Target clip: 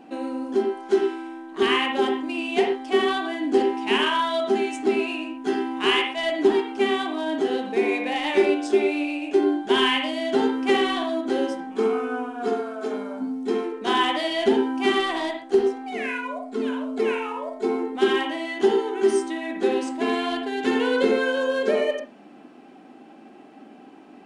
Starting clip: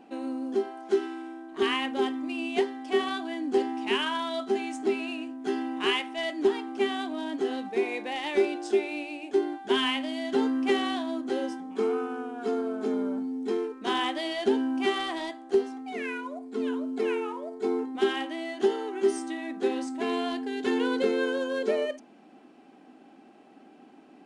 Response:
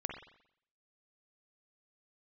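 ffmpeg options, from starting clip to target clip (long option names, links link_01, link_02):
-filter_complex "[0:a]asplit=3[link_01][link_02][link_03];[link_01]afade=type=out:start_time=12.48:duration=0.02[link_04];[link_02]highpass=frequency=540:poles=1,afade=type=in:start_time=12.48:duration=0.02,afade=type=out:start_time=13.2:duration=0.02[link_05];[link_03]afade=type=in:start_time=13.2:duration=0.02[link_06];[link_04][link_05][link_06]amix=inputs=3:normalize=0[link_07];[1:a]atrim=start_sample=2205,afade=type=out:start_time=0.19:duration=0.01,atrim=end_sample=8820[link_08];[link_07][link_08]afir=irnorm=-1:irlink=0,volume=6.5dB"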